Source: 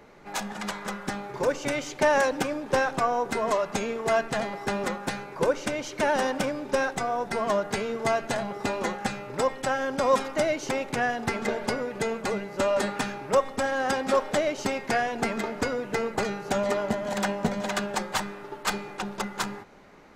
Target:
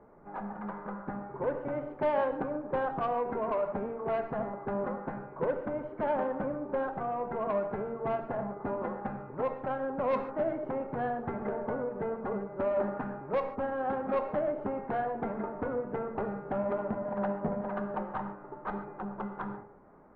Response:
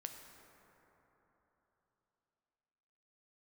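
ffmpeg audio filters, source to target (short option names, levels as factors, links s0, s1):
-filter_complex "[0:a]lowpass=f=1300:w=0.5412,lowpass=f=1300:w=1.3066,asoftclip=type=tanh:threshold=0.126[s0];[1:a]atrim=start_sample=2205,afade=t=out:st=0.2:d=0.01,atrim=end_sample=9261[s1];[s0][s1]afir=irnorm=-1:irlink=0"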